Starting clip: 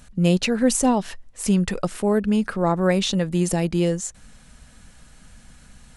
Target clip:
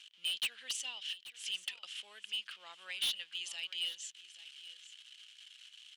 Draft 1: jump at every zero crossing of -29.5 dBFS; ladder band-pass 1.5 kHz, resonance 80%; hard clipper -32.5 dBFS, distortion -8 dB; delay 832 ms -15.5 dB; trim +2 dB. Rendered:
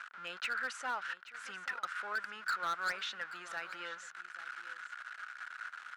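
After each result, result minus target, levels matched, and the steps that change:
4 kHz band -9.0 dB; jump at every zero crossing: distortion +10 dB
change: ladder band-pass 3.2 kHz, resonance 80%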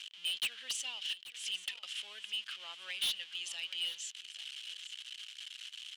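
jump at every zero crossing: distortion +10 dB
change: jump at every zero crossing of -40.5 dBFS

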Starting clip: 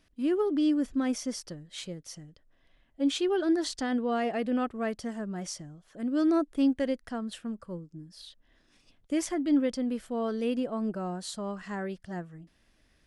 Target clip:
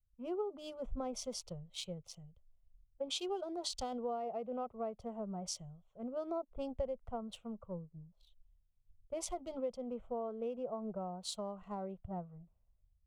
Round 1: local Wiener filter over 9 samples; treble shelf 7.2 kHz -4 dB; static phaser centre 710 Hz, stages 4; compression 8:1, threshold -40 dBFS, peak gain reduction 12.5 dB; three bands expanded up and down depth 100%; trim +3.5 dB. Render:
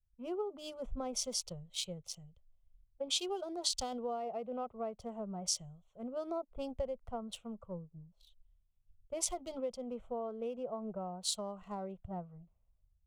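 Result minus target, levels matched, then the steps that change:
8 kHz band +6.0 dB
add after compression: treble shelf 3.1 kHz -9.5 dB

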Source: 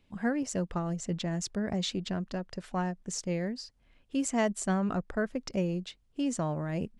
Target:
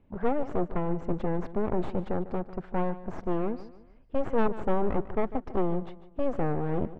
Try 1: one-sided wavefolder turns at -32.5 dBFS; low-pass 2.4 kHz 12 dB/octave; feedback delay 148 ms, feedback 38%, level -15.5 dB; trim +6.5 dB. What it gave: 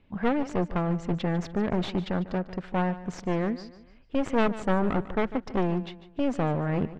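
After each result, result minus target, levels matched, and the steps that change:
one-sided wavefolder: distortion -10 dB; 2 kHz band +5.0 dB
change: one-sided wavefolder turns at -41 dBFS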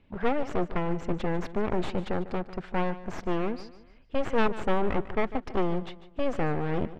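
2 kHz band +7.0 dB
change: low-pass 1.1 kHz 12 dB/octave

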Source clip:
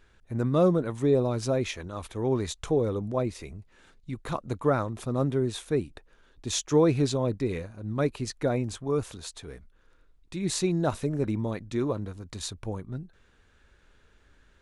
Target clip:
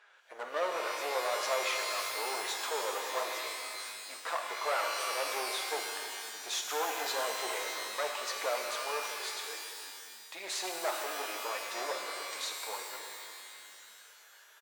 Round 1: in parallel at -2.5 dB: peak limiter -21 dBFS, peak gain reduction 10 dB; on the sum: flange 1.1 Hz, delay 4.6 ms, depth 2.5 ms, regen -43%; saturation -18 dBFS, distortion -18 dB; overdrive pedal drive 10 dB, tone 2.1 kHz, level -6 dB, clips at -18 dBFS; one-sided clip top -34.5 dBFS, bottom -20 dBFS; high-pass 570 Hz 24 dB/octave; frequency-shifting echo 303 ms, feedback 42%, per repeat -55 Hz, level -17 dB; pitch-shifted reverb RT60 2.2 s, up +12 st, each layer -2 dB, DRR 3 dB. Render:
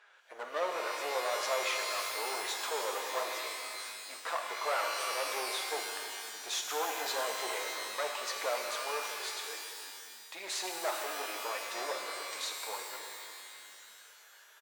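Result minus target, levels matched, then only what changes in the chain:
saturation: distortion +14 dB
change: saturation -9.5 dBFS, distortion -31 dB

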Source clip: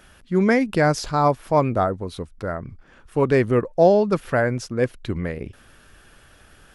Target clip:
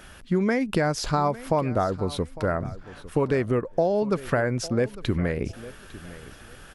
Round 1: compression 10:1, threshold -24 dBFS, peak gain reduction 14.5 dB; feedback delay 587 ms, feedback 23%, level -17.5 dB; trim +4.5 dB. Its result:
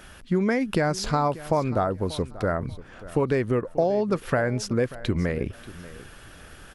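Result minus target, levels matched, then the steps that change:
echo 267 ms early
change: feedback delay 854 ms, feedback 23%, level -17.5 dB

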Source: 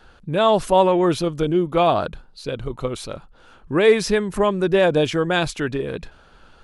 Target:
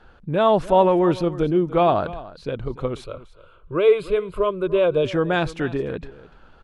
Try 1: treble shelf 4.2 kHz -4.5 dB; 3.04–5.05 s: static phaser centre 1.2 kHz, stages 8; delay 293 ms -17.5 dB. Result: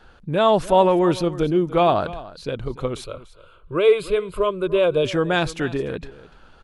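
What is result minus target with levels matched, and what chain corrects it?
8 kHz band +8.5 dB
treble shelf 4.2 kHz -16 dB; 3.04–5.05 s: static phaser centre 1.2 kHz, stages 8; delay 293 ms -17.5 dB

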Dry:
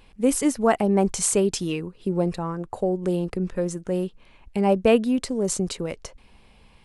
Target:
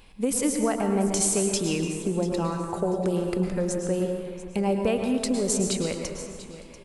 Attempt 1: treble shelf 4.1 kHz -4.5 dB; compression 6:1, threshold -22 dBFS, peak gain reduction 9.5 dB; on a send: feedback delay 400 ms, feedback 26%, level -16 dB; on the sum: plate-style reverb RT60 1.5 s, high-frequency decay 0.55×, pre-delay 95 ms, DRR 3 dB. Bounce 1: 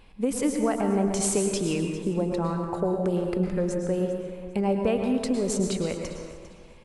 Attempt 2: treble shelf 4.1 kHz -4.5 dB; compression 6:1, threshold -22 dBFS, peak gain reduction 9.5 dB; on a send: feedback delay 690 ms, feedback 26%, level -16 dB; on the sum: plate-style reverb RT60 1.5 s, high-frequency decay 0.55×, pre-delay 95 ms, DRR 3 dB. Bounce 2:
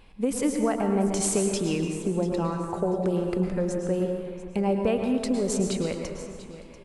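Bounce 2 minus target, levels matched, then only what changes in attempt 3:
8 kHz band -4.0 dB
change: treble shelf 4.1 kHz +5.5 dB

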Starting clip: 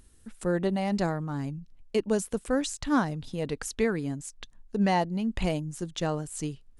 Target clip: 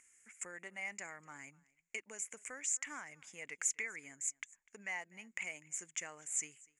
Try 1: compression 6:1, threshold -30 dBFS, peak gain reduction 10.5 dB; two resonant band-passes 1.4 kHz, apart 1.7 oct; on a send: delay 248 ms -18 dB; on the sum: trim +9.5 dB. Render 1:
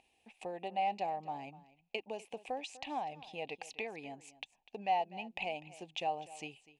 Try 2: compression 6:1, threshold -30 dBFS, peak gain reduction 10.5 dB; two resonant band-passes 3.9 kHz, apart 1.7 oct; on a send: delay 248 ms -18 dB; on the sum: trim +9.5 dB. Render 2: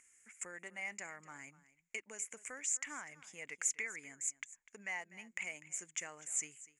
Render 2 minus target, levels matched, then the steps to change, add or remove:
echo-to-direct +6.5 dB
change: delay 248 ms -24.5 dB

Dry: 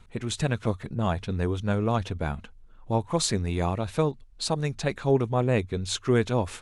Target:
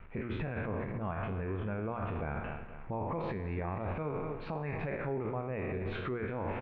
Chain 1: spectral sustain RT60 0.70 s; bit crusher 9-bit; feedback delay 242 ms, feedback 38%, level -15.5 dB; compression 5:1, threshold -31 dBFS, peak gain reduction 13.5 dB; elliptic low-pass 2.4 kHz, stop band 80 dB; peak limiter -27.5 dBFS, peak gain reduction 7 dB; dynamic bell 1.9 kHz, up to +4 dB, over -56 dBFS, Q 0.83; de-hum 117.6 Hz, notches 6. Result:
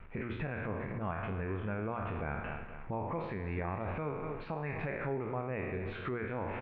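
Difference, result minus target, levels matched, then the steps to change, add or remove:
compression: peak gain reduction +13.5 dB; 2 kHz band +2.5 dB
remove: compression 5:1, threshold -31 dBFS, peak gain reduction 13.5 dB; remove: dynamic bell 1.9 kHz, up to +4 dB, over -56 dBFS, Q 0.83

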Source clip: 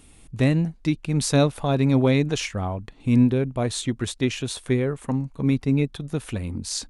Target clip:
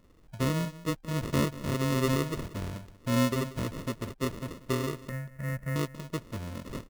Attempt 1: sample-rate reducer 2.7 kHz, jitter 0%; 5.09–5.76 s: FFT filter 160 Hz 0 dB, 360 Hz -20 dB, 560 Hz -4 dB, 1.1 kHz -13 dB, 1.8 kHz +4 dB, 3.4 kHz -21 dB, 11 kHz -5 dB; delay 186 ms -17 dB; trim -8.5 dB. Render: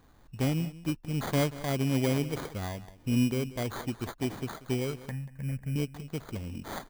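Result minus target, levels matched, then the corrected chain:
sample-rate reducer: distortion -11 dB
sample-rate reducer 790 Hz, jitter 0%; 5.09–5.76 s: FFT filter 160 Hz 0 dB, 360 Hz -20 dB, 560 Hz -4 dB, 1.1 kHz -13 dB, 1.8 kHz +4 dB, 3.4 kHz -21 dB, 11 kHz -5 dB; delay 186 ms -17 dB; trim -8.5 dB

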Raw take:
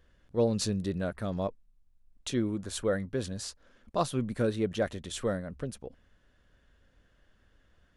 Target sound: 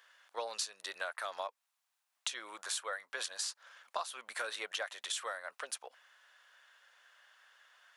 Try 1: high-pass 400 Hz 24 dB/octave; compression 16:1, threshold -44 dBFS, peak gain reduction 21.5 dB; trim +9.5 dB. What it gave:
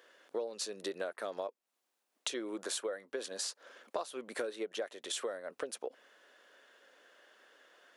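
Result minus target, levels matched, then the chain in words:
500 Hz band +7.5 dB
high-pass 850 Hz 24 dB/octave; compression 16:1, threshold -44 dBFS, peak gain reduction 17.5 dB; trim +9.5 dB

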